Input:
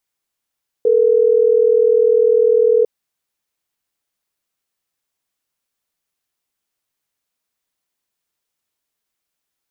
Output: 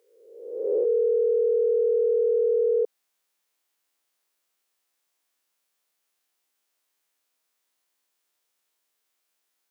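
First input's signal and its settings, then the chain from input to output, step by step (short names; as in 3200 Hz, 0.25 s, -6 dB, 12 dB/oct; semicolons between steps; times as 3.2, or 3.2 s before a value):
call progress tone ringback tone, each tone -12.5 dBFS
spectral swells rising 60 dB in 0.93 s; limiter -16.5 dBFS; HPF 310 Hz 12 dB/oct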